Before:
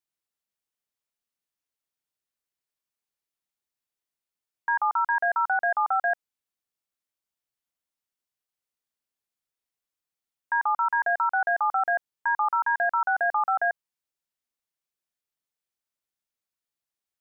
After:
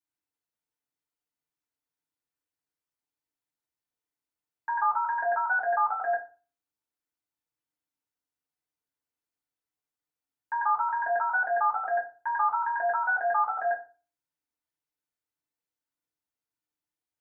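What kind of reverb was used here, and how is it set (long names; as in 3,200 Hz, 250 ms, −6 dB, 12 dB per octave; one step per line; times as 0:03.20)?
feedback delay network reverb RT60 0.35 s, low-frequency decay 1.3×, high-frequency decay 0.35×, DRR −4.5 dB
level −7.5 dB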